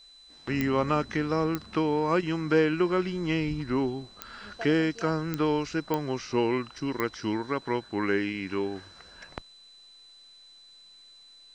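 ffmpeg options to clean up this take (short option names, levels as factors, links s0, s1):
-af "adeclick=t=4,bandreject=f=4000:w=30,agate=range=0.0891:threshold=0.00501"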